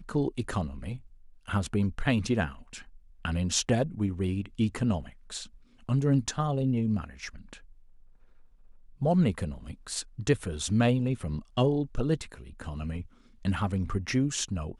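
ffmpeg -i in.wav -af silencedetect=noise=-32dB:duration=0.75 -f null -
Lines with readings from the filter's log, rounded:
silence_start: 7.53
silence_end: 9.02 | silence_duration: 1.49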